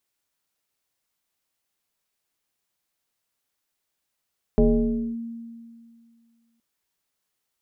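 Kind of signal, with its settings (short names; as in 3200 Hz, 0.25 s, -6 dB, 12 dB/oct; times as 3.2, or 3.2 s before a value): FM tone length 2.02 s, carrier 231 Hz, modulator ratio 0.83, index 1.5, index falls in 0.59 s linear, decay 2.19 s, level -12.5 dB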